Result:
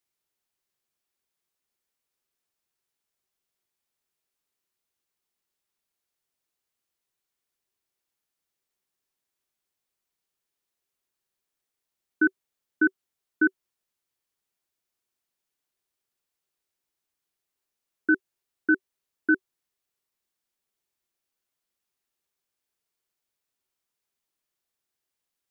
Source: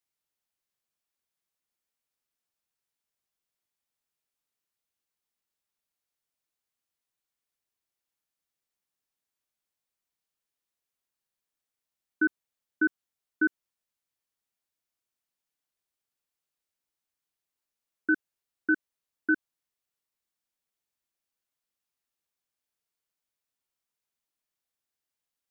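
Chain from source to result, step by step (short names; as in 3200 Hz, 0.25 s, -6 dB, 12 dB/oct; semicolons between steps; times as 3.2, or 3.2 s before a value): bell 380 Hz +6.5 dB 0.21 oct; gain +3 dB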